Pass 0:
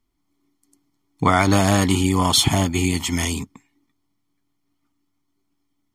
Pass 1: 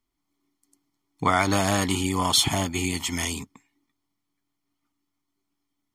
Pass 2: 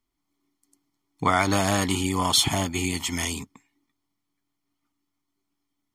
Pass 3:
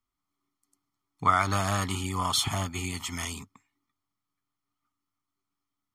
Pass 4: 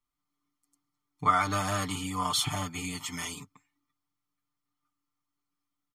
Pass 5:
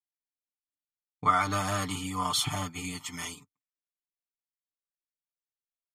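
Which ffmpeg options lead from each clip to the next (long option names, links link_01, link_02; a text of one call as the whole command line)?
ffmpeg -i in.wav -af "lowshelf=frequency=380:gain=-6,volume=-3dB" out.wav
ffmpeg -i in.wav -af anull out.wav
ffmpeg -i in.wav -af "equalizer=frequency=100:width_type=o:width=0.33:gain=6,equalizer=frequency=315:width_type=o:width=0.33:gain=-7,equalizer=frequency=500:width_type=o:width=0.33:gain=-4,equalizer=frequency=1250:width_type=o:width=0.33:gain=11,volume=-6.5dB" out.wav
ffmpeg -i in.wav -af "aecho=1:1:6.7:0.99,volume=-4.5dB" out.wav
ffmpeg -i in.wav -af "agate=range=-33dB:threshold=-34dB:ratio=3:detection=peak" out.wav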